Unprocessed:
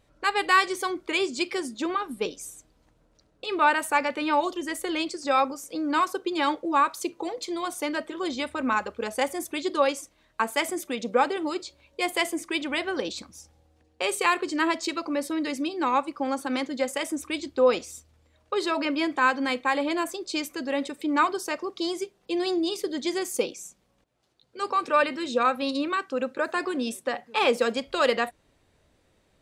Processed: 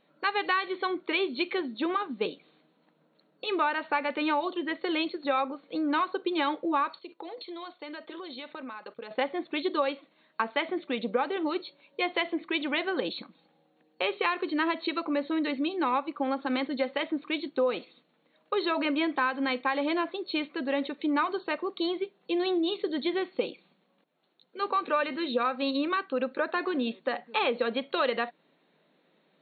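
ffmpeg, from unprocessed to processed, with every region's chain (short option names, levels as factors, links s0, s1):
-filter_complex "[0:a]asettb=1/sr,asplit=3[s0][s1][s2];[s0]atrim=end=6.984[s3];[s1]atrim=start=6.98:end=9.11,asetpts=PTS-STARTPTS,afade=t=in:d=0.004:c=qsin,afade=t=out:st=2.126:d=0.004:c=qsin,bass=f=250:g=-8,treble=f=4000:g=8,acompressor=threshold=0.0158:ratio=12:attack=3.2:release=140:knee=1:detection=peak,agate=range=0.224:threshold=0.00251:ratio=16:release=100:detection=peak[s4];[s2]atrim=start=9.106[s5];[s3][s4]acrossfade=d=0.004:c1=hsin:c2=qsin[s6];[s6][s5]acrossfade=d=0.004:c1=qsin:c2=hsin,afftfilt=real='re*between(b*sr/4096,150,4400)':imag='im*between(b*sr/4096,150,4400)':win_size=4096:overlap=0.75,acompressor=threshold=0.0708:ratio=6"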